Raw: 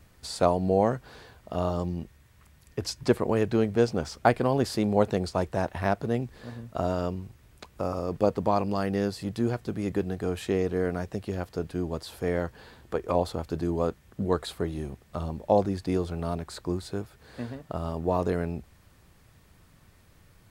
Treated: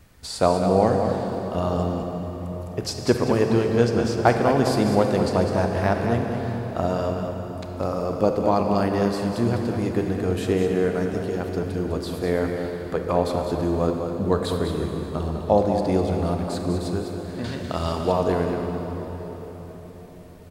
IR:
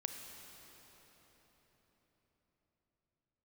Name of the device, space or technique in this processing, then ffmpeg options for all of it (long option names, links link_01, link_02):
cave: -filter_complex "[0:a]asettb=1/sr,asplit=3[link_01][link_02][link_03];[link_01]atrim=end=17.444[link_04];[link_02]atrim=start=17.44:end=18.12,asetpts=PTS-STARTPTS,afade=type=in:duration=0.004:curve=qsin,afade=type=out:start_time=0.676:duration=0.004:curve=qsin,equalizer=frequency=4500:width_type=o:width=2.9:gain=14.5[link_05];[link_03]atrim=start=18.116[link_06];[link_04][link_05]acrossfade=duration=0.004:curve1=hsin:curve2=qsin[link_07];[link_07][link_06]acrossfade=duration=0.004:curve1=qsin:curve2=hsin,aecho=1:1:202:0.398[link_08];[1:a]atrim=start_sample=2205[link_09];[link_08][link_09]afir=irnorm=-1:irlink=0,volume=5.5dB"